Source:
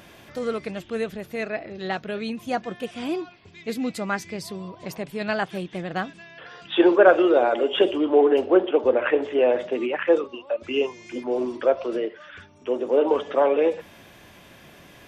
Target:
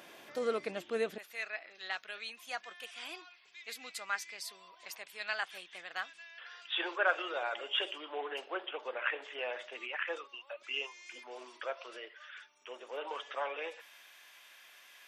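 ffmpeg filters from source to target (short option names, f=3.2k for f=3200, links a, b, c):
-af "asetnsamples=n=441:p=0,asendcmd='1.18 highpass f 1400',highpass=330,volume=-4.5dB"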